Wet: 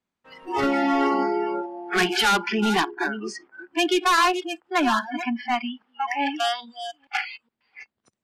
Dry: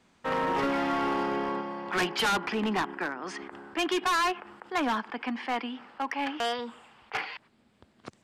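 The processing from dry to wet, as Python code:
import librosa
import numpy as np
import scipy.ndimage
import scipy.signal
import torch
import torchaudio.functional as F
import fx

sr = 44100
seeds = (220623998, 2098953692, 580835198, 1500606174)

y = fx.reverse_delay(x, sr, ms=416, wet_db=-8.5)
y = fx.noise_reduce_blind(y, sr, reduce_db=28)
y = F.gain(torch.from_numpy(y), 7.0).numpy()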